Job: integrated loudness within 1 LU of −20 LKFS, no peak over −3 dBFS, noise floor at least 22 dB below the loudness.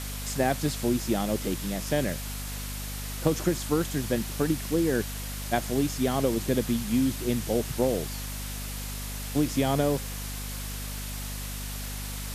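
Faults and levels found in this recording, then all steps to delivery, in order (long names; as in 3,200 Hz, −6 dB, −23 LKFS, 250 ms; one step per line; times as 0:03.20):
mains hum 50 Hz; hum harmonics up to 250 Hz; level of the hum −34 dBFS; background noise floor −35 dBFS; target noise floor −51 dBFS; integrated loudness −29.0 LKFS; sample peak −10.5 dBFS; target loudness −20.0 LKFS
→ hum removal 50 Hz, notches 5
broadband denoise 16 dB, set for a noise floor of −35 dBFS
level +9 dB
brickwall limiter −3 dBFS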